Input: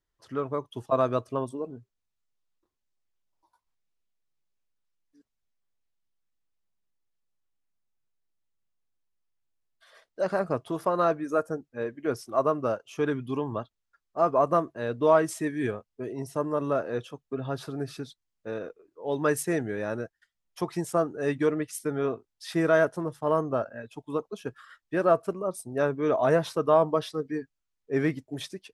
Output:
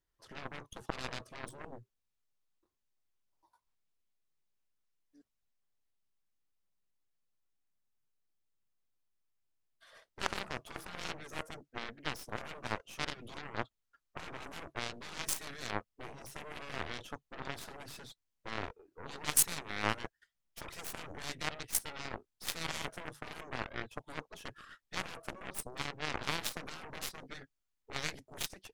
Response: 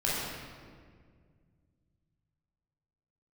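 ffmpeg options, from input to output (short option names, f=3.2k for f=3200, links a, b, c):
-af "afftfilt=real='re*lt(hypot(re,im),0.0794)':imag='im*lt(hypot(re,im),0.0794)':win_size=1024:overlap=0.75,aeval=exprs='0.0944*(cos(1*acos(clip(val(0)/0.0944,-1,1)))-cos(1*PI/2))+0.015*(cos(4*acos(clip(val(0)/0.0944,-1,1)))-cos(4*PI/2))+0.0211*(cos(6*acos(clip(val(0)/0.0944,-1,1)))-cos(6*PI/2))+0.0168*(cos(7*acos(clip(val(0)/0.0944,-1,1)))-cos(7*PI/2))+0.0133*(cos(8*acos(clip(val(0)/0.0944,-1,1)))-cos(8*PI/2))':c=same,volume=10dB"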